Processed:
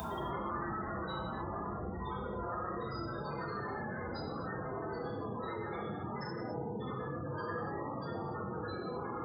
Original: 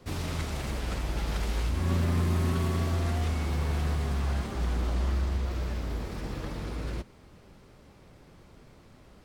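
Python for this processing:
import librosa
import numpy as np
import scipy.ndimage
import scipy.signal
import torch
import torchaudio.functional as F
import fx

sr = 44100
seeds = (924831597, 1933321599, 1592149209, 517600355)

y = scipy.signal.sosfilt(scipy.signal.butter(4, 110.0, 'highpass', fs=sr, output='sos'), x)
y = fx.peak_eq(y, sr, hz=2500.0, db=-8.0, octaves=0.35)
y = y + 10.0 ** (-15.0 / 20.0) * np.pad(y, (int(137 * sr / 1000.0), 0))[:len(y)]
y = fx.paulstretch(y, sr, seeds[0], factor=5.2, window_s=0.05, from_s=5.0)
y = fx.spec_gate(y, sr, threshold_db=-15, keep='strong')
y = F.preemphasis(torch.from_numpy(y), 0.97).numpy()
y = fx.notch(y, sr, hz=580.0, q=12.0)
y = fx.rev_gated(y, sr, seeds[1], gate_ms=320, shape='falling', drr_db=-5.5)
y = fx.env_flatten(y, sr, amount_pct=50)
y = y * librosa.db_to_amplitude(15.0)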